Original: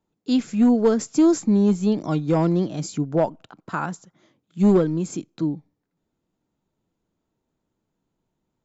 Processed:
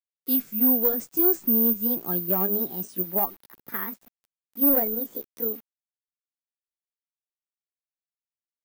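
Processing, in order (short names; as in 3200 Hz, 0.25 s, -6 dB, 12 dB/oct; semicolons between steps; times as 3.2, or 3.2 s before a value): gliding pitch shift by +10.5 st starting unshifted; bit-crush 8-bit; careless resampling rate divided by 3×, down filtered, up zero stuff; gain -8 dB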